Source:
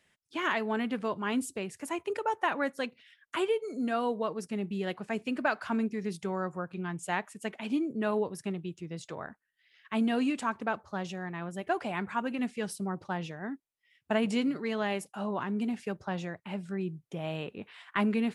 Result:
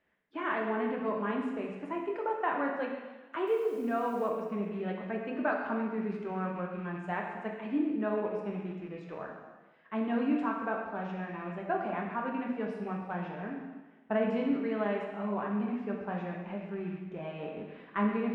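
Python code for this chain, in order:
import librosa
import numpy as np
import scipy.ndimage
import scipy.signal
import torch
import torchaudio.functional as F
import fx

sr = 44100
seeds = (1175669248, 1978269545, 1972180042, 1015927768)

y = fx.rattle_buzz(x, sr, strikes_db=-43.0, level_db=-38.0)
y = scipy.signal.sosfilt(scipy.signal.butter(2, 1600.0, 'lowpass', fs=sr, output='sos'), y)
y = fx.peak_eq(y, sr, hz=110.0, db=-9.0, octaves=1.1)
y = fx.quant_dither(y, sr, seeds[0], bits=10, dither='none', at=(3.47, 4.29))
y = fx.rev_plate(y, sr, seeds[1], rt60_s=1.3, hf_ratio=1.0, predelay_ms=0, drr_db=-0.5)
y = F.gain(torch.from_numpy(y), -2.5).numpy()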